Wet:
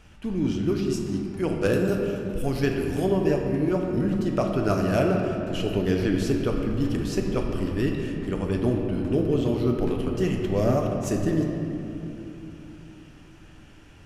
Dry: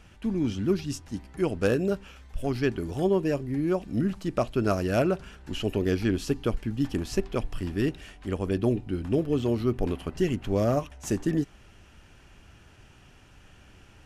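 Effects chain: 1.73–3.06 high shelf 7700 Hz +11 dB; shoebox room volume 140 m³, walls hard, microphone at 0.37 m

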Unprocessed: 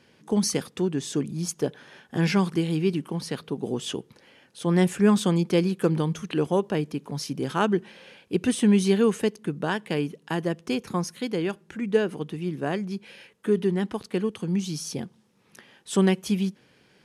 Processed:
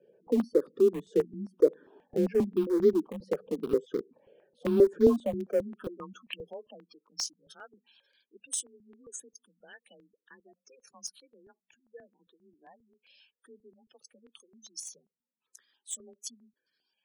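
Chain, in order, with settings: notch 2000 Hz, Q 6.9; spectral gate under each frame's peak -15 dB strong; band-pass sweep 400 Hz -> 7100 Hz, 4.96–7.32; frequency shift +27 Hz; in parallel at -12 dB: sample gate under -30.5 dBFS; on the sum: step phaser 7.5 Hz 280–2700 Hz; gain +6 dB

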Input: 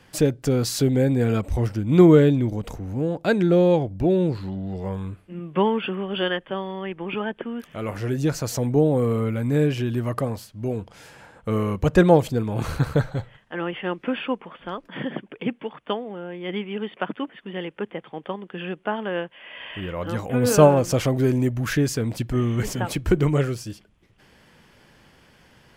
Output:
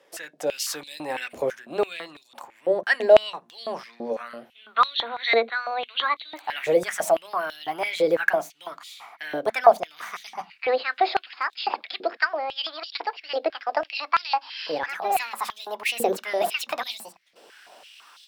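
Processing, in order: speed glide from 108% -> 174%; AGC gain up to 10 dB; on a send at -15 dB: reverb RT60 0.15 s, pre-delay 3 ms; on the sum: stepped high-pass 6 Hz 490–3700 Hz; gain -8 dB

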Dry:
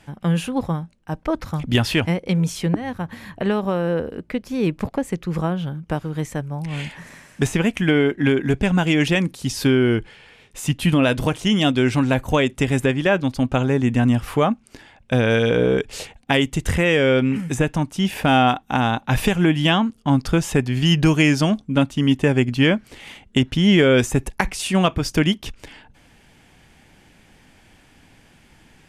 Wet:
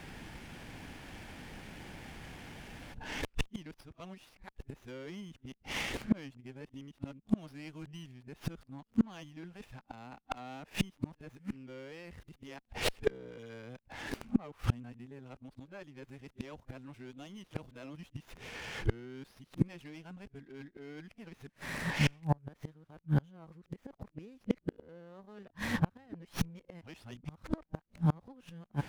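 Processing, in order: whole clip reversed; flipped gate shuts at -19 dBFS, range -35 dB; running maximum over 5 samples; gain +4.5 dB

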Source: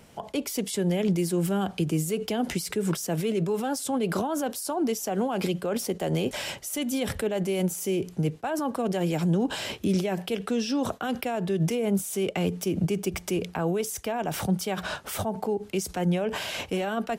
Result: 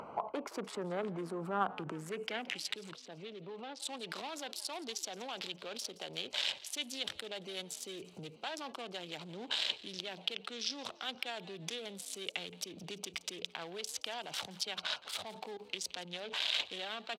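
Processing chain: Wiener smoothing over 25 samples; limiter -26 dBFS, peak gain reduction 10 dB; band-pass sweep 1200 Hz -> 3600 Hz, 1.86–2.73; upward compressor, threshold -51 dBFS; 2.93–3.8 tape spacing loss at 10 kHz 26 dB; frequency-shifting echo 0.171 s, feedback 42%, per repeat +62 Hz, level -19.5 dB; gain +12.5 dB

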